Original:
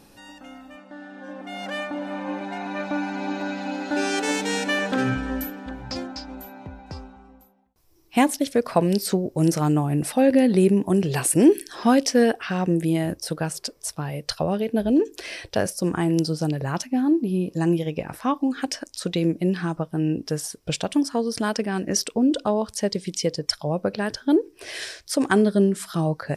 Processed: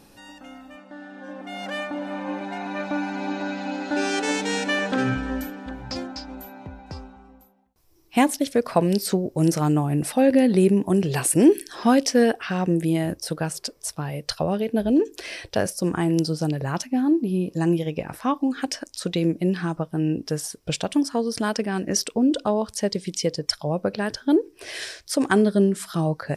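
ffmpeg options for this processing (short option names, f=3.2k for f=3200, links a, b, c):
-filter_complex "[0:a]asettb=1/sr,asplit=3[a][b][c];[a]atrim=end=3.294[d];[b]atrim=start=3.29:end=5.6,asetpts=PTS-STARTPTS,afade=t=in:d=0.004:c=qsin,afade=t=out:st=2.306:d=0.004:c=qsin,lowpass=9.1k[e];[c]atrim=start=5.596[f];[d][e]acrossfade=d=0.004:c1=hsin:c2=qsin[g];[g][f]acrossfade=d=0.004:c1=qsin:c2=hsin"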